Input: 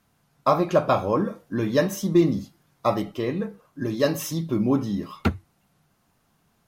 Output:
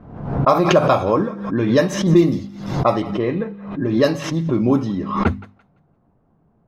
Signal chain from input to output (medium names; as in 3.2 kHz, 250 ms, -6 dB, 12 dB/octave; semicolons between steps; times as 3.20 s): level-controlled noise filter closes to 630 Hz, open at -15.5 dBFS; hum notches 50/100/150/200/250 Hz; in parallel at -1 dB: compression, threshold -33 dBFS, peak gain reduction 18.5 dB; on the sum: thinning echo 170 ms, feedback 26%, high-pass 910 Hz, level -17 dB; swell ahead of each attack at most 69 dB/s; trim +3.5 dB